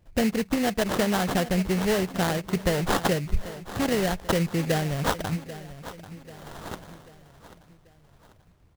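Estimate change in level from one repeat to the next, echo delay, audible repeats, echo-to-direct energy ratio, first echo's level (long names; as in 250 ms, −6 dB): −6.5 dB, 789 ms, 4, −14.0 dB, −15.0 dB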